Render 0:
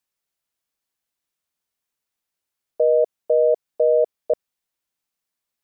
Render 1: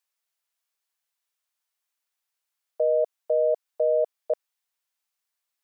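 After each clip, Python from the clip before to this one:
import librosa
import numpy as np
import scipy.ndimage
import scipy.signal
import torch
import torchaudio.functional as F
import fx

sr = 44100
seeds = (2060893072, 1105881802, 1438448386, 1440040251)

y = scipy.signal.sosfilt(scipy.signal.butter(2, 690.0, 'highpass', fs=sr, output='sos'), x)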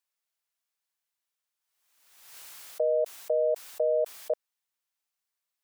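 y = fx.pre_swell(x, sr, db_per_s=51.0)
y = F.gain(torch.from_numpy(y), -3.5).numpy()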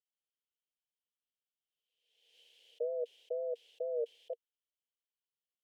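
y = fx.wow_flutter(x, sr, seeds[0], rate_hz=2.1, depth_cents=120.0)
y = fx.double_bandpass(y, sr, hz=1200.0, octaves=2.7)
y = F.gain(torch.from_numpy(y), -3.0).numpy()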